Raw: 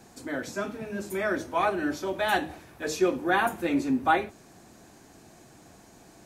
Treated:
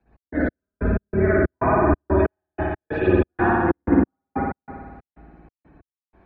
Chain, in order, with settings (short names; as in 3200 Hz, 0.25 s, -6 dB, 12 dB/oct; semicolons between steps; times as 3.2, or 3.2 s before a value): octaver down 2 oct, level +1 dB; compressor 3:1, threshold -31 dBFS, peak gain reduction 11 dB; dynamic EQ 210 Hz, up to +6 dB, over -49 dBFS, Q 1.2; treble ducked by the level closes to 2100 Hz, closed at -27.5 dBFS; spectral gate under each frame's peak -25 dB strong; LPF 3000 Hz 24 dB/oct; spring tank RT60 2.5 s, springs 55 ms, chirp 65 ms, DRR -10 dB; step gate "x.x..x.xx.x" 93 bpm -60 dB; three-band expander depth 70%; gain +3 dB